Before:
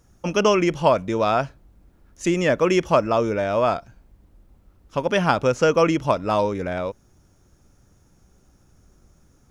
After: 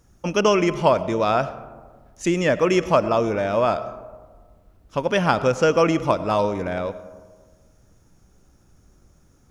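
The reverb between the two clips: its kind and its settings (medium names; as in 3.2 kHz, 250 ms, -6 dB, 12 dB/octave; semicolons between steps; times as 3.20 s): algorithmic reverb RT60 1.5 s, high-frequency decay 0.35×, pre-delay 50 ms, DRR 14 dB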